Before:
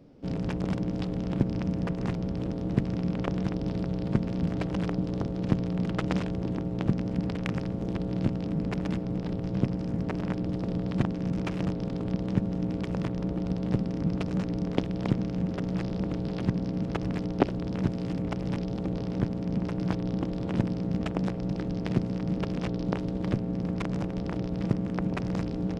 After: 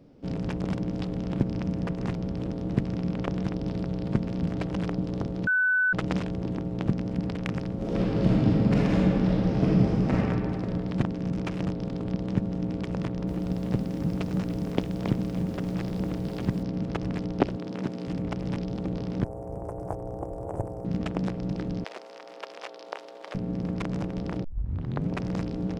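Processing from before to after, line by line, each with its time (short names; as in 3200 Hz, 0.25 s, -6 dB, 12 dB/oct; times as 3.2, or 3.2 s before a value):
5.47–5.93 bleep 1500 Hz -20 dBFS
7.75–10.11 reverb throw, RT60 2.4 s, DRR -7 dB
12.98–16.63 lo-fi delay 0.295 s, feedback 55%, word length 7-bit, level -13 dB
17.56–18.08 HPF 200 Hz
19.24–20.85 EQ curve 100 Hz 0 dB, 220 Hz -19 dB, 360 Hz -2 dB, 730 Hz +7 dB, 2800 Hz -24 dB, 4200 Hz -28 dB, 8300 Hz +6 dB
21.84–23.35 HPF 550 Hz 24 dB/oct
24.44 tape start 0.67 s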